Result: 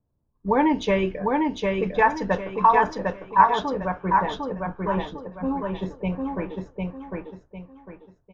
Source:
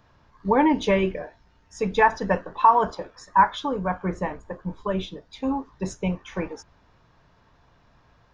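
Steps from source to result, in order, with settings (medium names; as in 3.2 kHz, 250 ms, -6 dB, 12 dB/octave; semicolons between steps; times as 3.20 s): gate -51 dBFS, range -13 dB; level-controlled noise filter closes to 420 Hz, open at -17.5 dBFS; feedback delay 752 ms, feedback 32%, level -3 dB; trim -1 dB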